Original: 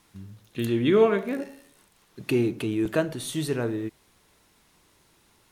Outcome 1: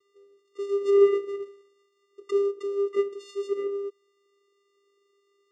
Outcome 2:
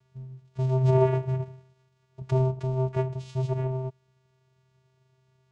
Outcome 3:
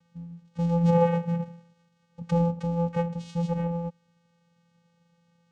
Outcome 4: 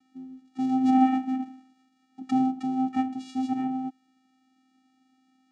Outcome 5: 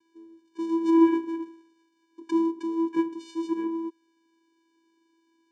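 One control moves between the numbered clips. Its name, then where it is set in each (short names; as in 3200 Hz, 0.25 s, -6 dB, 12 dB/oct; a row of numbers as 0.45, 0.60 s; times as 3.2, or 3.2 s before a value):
vocoder, frequency: 400, 130, 170, 260, 330 Hz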